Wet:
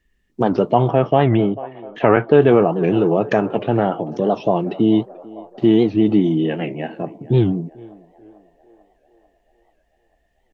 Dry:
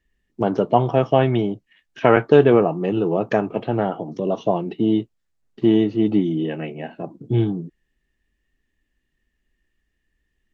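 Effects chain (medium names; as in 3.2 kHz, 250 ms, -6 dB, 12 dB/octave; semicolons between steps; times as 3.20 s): band-passed feedback delay 442 ms, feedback 69%, band-pass 730 Hz, level -18.5 dB; in parallel at +3 dB: peak limiter -11.5 dBFS, peak gain reduction 10 dB; 0.88–2.42 s: on the sum: low-pass 2.9 kHz 12 dB/octave; warped record 78 rpm, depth 160 cents; trim -3 dB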